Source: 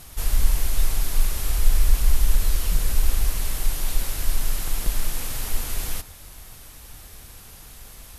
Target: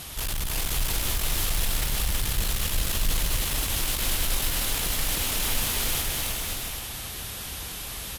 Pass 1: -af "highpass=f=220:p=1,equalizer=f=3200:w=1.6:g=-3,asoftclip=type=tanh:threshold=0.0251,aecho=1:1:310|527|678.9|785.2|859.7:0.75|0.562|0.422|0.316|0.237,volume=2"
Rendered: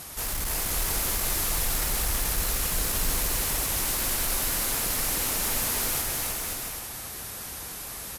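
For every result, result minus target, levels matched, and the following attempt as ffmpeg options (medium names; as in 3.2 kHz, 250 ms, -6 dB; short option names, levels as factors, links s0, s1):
125 Hz band -4.5 dB; 4 kHz band -4.0 dB
-af "highpass=f=68:p=1,equalizer=f=3200:w=1.6:g=-3,asoftclip=type=tanh:threshold=0.0251,aecho=1:1:310|527|678.9|785.2|859.7:0.75|0.562|0.422|0.316|0.237,volume=2"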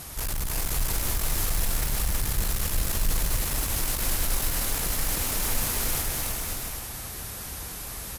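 4 kHz band -4.5 dB
-af "highpass=f=68:p=1,equalizer=f=3200:w=1.6:g=6,asoftclip=type=tanh:threshold=0.0251,aecho=1:1:310|527|678.9|785.2|859.7:0.75|0.562|0.422|0.316|0.237,volume=2"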